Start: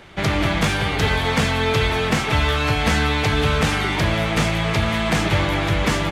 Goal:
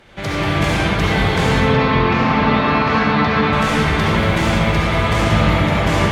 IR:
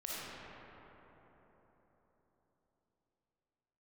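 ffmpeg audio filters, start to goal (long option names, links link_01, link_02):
-filter_complex "[0:a]asettb=1/sr,asplit=3[link_01][link_02][link_03];[link_01]atrim=end=1.604[link_04];[link_02]atrim=start=1.6:end=3.53,asetpts=PTS-STARTPTS,afade=type=in:duration=0.004:curve=qsin,afade=type=out:start_time=1.926:duration=0.004:curve=qsin,highpass=150,equalizer=frequency=230:width_type=q:width=4:gain=6,equalizer=frequency=1100:width_type=q:width=4:gain=8,equalizer=frequency=3300:width_type=q:width=4:gain=-5,lowpass=frequency=4600:width=0.5412,lowpass=frequency=4600:width=1.3066[link_05];[link_03]atrim=start=3.526[link_06];[link_04][link_05]acrossfade=duration=0.004:curve1=hsin:curve2=qsin[link_07];[link_07][link_06]acrossfade=duration=0.004:curve1=qsin:curve2=hsin,asettb=1/sr,asplit=3[link_08][link_09][link_10];[link_08]atrim=end=4.144[link_11];[link_09]atrim=start=4.14:end=4.76,asetpts=PTS-STARTPTS,afade=type=in:duration=0.004:curve=qsin,afade=type=out:start_time=0.616:duration=0.004:curve=qsin,acrusher=bits=8:mode=log:mix=0:aa=0.000001[link_12];[link_10]atrim=start=4.756[link_13];[link_11][link_12]acrossfade=duration=0.004:curve1=hsin:curve2=qsin[link_14];[link_14][link_13]acrossfade=duration=0.004:curve1=qsin:curve2=hsin[link_15];[1:a]atrim=start_sample=2205,asetrate=35721,aresample=44100[link_16];[link_15][link_16]afir=irnorm=-1:irlink=0"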